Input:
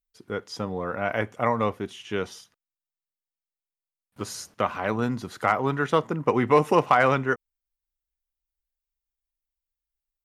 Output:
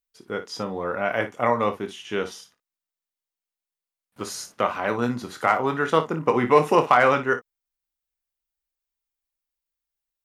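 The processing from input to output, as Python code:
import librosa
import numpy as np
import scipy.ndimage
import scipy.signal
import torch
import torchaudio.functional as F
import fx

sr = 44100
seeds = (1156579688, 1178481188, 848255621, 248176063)

y = fx.low_shelf(x, sr, hz=120.0, db=-11.5)
y = fx.room_early_taps(y, sr, ms=(25, 57), db=(-9.0, -12.5))
y = y * librosa.db_to_amplitude(2.0)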